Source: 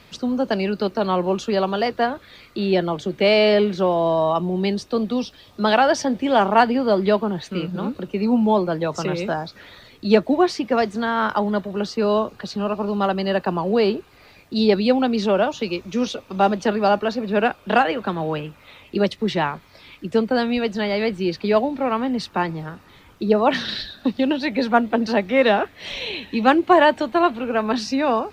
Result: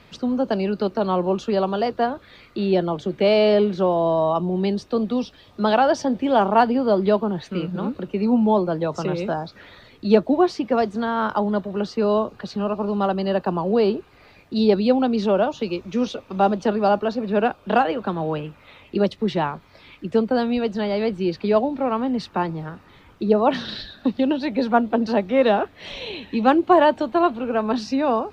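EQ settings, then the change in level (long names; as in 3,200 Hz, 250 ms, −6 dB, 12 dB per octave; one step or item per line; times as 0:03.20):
high-shelf EQ 4,800 Hz −10 dB
dynamic equaliser 2,000 Hz, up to −7 dB, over −40 dBFS, Q 1.7
0.0 dB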